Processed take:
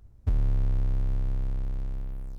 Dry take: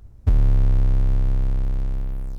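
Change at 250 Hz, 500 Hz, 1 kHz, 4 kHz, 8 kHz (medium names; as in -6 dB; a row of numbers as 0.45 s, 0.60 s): -8.0 dB, -8.0 dB, -8.0 dB, no reading, no reading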